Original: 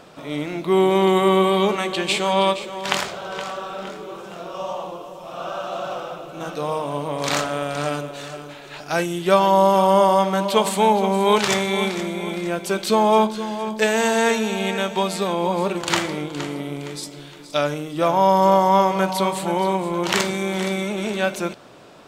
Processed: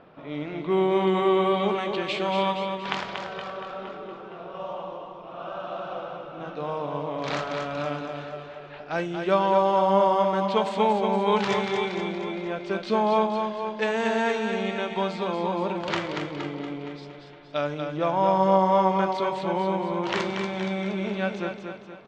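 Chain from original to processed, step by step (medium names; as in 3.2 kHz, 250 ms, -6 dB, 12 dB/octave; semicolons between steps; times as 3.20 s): level-controlled noise filter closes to 2.6 kHz, open at -14.5 dBFS; distance through air 170 m; feedback delay 235 ms, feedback 45%, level -6 dB; trim -5.5 dB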